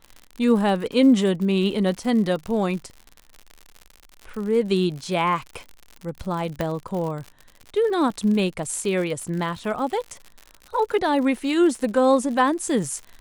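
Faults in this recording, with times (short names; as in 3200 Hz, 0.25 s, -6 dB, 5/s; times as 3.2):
crackle 83/s -31 dBFS
6.61 pop -11 dBFS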